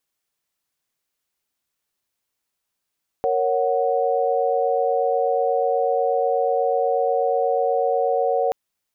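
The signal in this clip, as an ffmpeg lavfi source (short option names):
-f lavfi -i "aevalsrc='0.0794*(sin(2*PI*466.16*t)+sin(2*PI*554.37*t)+sin(2*PI*739.99*t))':d=5.28:s=44100"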